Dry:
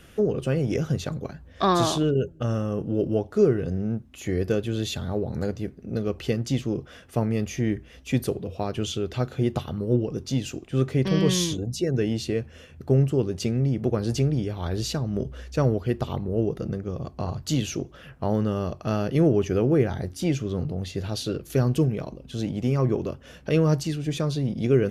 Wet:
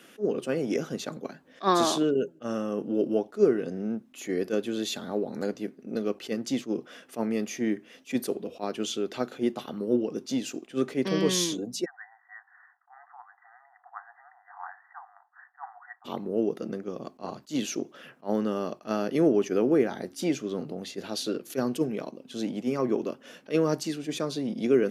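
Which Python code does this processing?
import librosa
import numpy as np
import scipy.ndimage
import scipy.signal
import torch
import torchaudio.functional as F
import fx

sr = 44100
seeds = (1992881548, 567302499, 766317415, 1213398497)

y = fx.brickwall_bandpass(x, sr, low_hz=700.0, high_hz=2000.0, at=(11.84, 16.04), fade=0.02)
y = scipy.signal.sosfilt(scipy.signal.cheby1(3, 1.0, 230.0, 'highpass', fs=sr, output='sos'), y)
y = fx.dynamic_eq(y, sr, hz=2900.0, q=3.1, threshold_db=-47.0, ratio=4.0, max_db=-3)
y = fx.attack_slew(y, sr, db_per_s=360.0)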